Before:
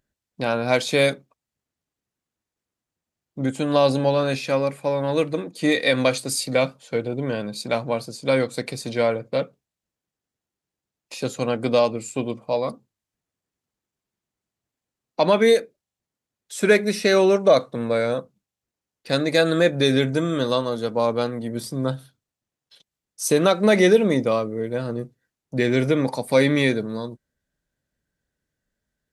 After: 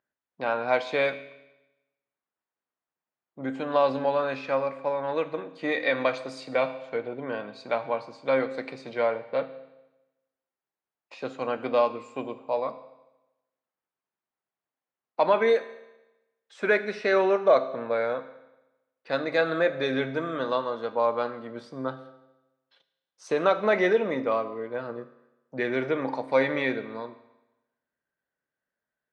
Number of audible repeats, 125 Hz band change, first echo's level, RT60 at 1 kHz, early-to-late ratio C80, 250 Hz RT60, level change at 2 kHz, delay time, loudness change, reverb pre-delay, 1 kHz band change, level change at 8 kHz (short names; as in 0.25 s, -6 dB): none, -15.5 dB, none, 1.0 s, 15.0 dB, 1.0 s, -3.5 dB, none, -5.5 dB, 8 ms, -1.0 dB, under -20 dB